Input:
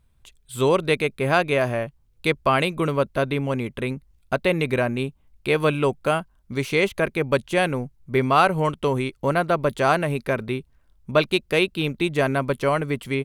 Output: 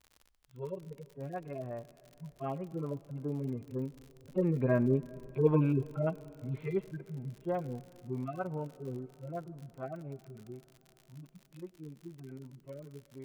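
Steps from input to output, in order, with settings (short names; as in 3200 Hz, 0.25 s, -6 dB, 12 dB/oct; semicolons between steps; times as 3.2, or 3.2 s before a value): median-filter separation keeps harmonic; Doppler pass-by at 5.24, 7 m/s, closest 4.6 m; LPF 1200 Hz 12 dB/oct; crackle 59/s -44 dBFS; reverb RT60 4.3 s, pre-delay 83 ms, DRR 19 dB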